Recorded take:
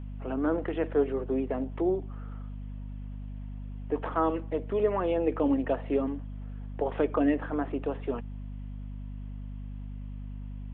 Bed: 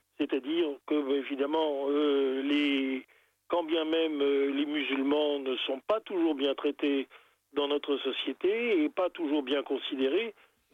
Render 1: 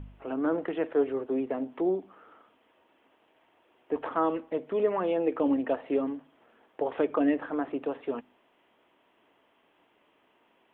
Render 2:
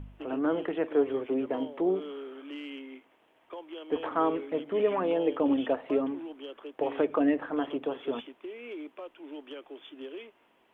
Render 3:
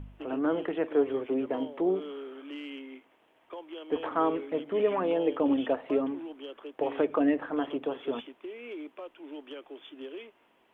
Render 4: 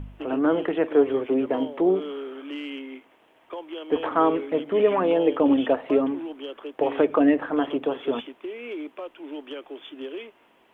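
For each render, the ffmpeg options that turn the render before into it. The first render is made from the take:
-af "bandreject=f=50:t=h:w=4,bandreject=f=100:t=h:w=4,bandreject=f=150:t=h:w=4,bandreject=f=200:t=h:w=4,bandreject=f=250:t=h:w=4"
-filter_complex "[1:a]volume=0.211[s0];[0:a][s0]amix=inputs=2:normalize=0"
-af anull
-af "volume=2.11"

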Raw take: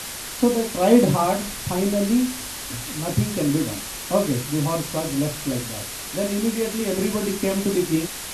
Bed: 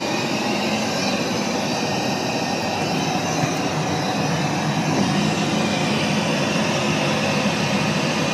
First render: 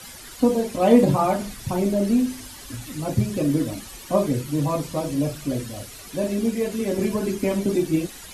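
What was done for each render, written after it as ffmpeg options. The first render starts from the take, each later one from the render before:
-af "afftdn=nr=12:nf=-33"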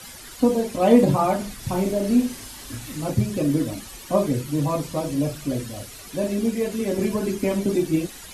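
-filter_complex "[0:a]asettb=1/sr,asplit=3[s0][s1][s2];[s0]atrim=end=1.594[s3];[s1]atrim=start=1.59:end=3.11,asetpts=PTS-STARTPTS,afade=t=in:d=0.004:c=qsin,afade=t=out:st=1.516:d=0.004:c=qsin,asplit=2[s4][s5];[s5]adelay=37,volume=0.562[s6];[s4][s6]amix=inputs=2:normalize=0,atrim=end_sample=67032[s7];[s2]atrim=start=3.106[s8];[s3][s7]acrossfade=d=0.004:c1=hsin:c2=qsin[s9];[s9][s8]acrossfade=d=0.004:c1=qsin:c2=hsin"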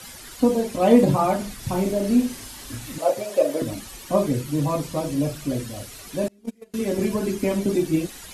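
-filter_complex "[0:a]asettb=1/sr,asplit=3[s0][s1][s2];[s0]atrim=end=2.984[s3];[s1]atrim=start=2.98:end=3.62,asetpts=PTS-STARTPTS,afade=t=in:d=0.004:c=qsin,afade=t=out:st=0.636:d=0.004:c=qsin,highpass=f=590:t=q:w=6.2[s4];[s2]atrim=start=3.616[s5];[s3][s4]acrossfade=d=0.004:c1=hsin:c2=qsin[s6];[s6][s5]acrossfade=d=0.004:c1=qsin:c2=hsin,asettb=1/sr,asplit=3[s7][s8][s9];[s7]atrim=end=6.284[s10];[s8]atrim=start=6.28:end=6.74,asetpts=PTS-STARTPTS,afade=t=in:d=0.004:c=qsin,afade=t=out:st=0.456:d=0.004:c=qsin,agate=range=0.0282:threshold=0.112:ratio=16:release=100:detection=peak[s11];[s9]atrim=start=6.736[s12];[s10][s11]acrossfade=d=0.004:c1=hsin:c2=qsin[s13];[s13][s12]acrossfade=d=0.004:c1=qsin:c2=hsin"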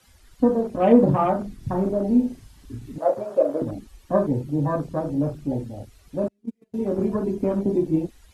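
-af "afwtdn=0.0251,highshelf=f=5900:g=-5.5"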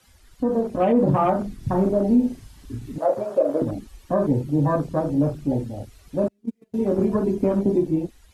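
-af "alimiter=limit=0.224:level=0:latency=1:release=80,dynaudnorm=f=150:g=9:m=1.41"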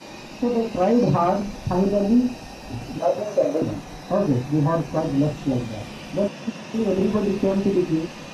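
-filter_complex "[1:a]volume=0.15[s0];[0:a][s0]amix=inputs=2:normalize=0"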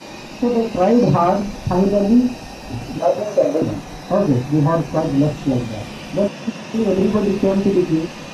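-af "volume=1.68"

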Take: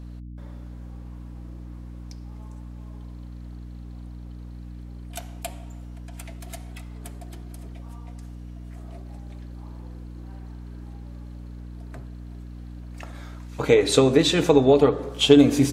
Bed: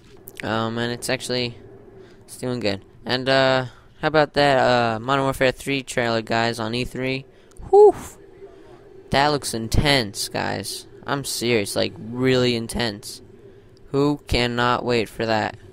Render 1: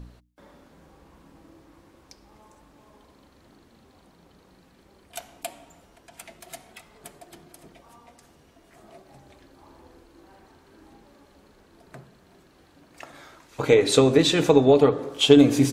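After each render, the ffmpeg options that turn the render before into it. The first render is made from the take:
-af "bandreject=f=60:t=h:w=4,bandreject=f=120:t=h:w=4,bandreject=f=180:t=h:w=4,bandreject=f=240:t=h:w=4,bandreject=f=300:t=h:w=4"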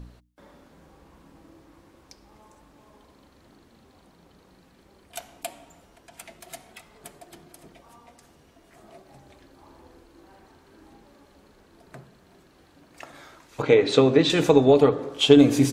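-filter_complex "[0:a]asettb=1/sr,asplit=3[s0][s1][s2];[s0]atrim=end=13.624[s3];[s1]atrim=start=13.62:end=14.3,asetpts=PTS-STARTPTS,afade=t=in:d=0.004:c=qsin,afade=t=out:st=0.676:d=0.004:c=qsin,highpass=100,lowpass=4100[s4];[s2]atrim=start=14.296[s5];[s3][s4]acrossfade=d=0.004:c1=hsin:c2=qsin[s6];[s6][s5]acrossfade=d=0.004:c1=qsin:c2=hsin,asettb=1/sr,asplit=3[s7][s8][s9];[s7]atrim=end=14.954[s10];[s8]atrim=start=14.95:end=15.42,asetpts=PTS-STARTPTS,afade=t=in:d=0.004:c=qsin,afade=t=out:st=0.466:d=0.004:c=qsin,highshelf=f=9300:g=-8[s11];[s9]atrim=start=15.416[s12];[s10][s11]acrossfade=d=0.004:c1=hsin:c2=qsin[s13];[s13][s12]acrossfade=d=0.004:c1=qsin:c2=hsin"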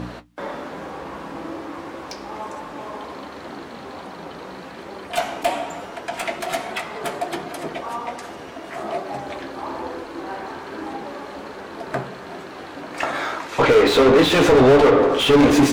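-filter_complex "[0:a]asplit=2[s0][s1];[s1]highpass=f=720:p=1,volume=79.4,asoftclip=type=tanh:threshold=0.841[s2];[s0][s2]amix=inputs=2:normalize=0,lowpass=f=1400:p=1,volume=0.501,flanger=delay=9.8:depth=6.4:regen=-45:speed=1.2:shape=sinusoidal"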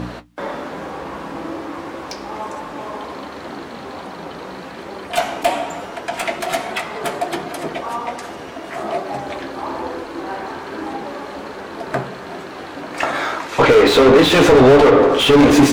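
-af "volume=1.58,alimiter=limit=0.708:level=0:latency=1"

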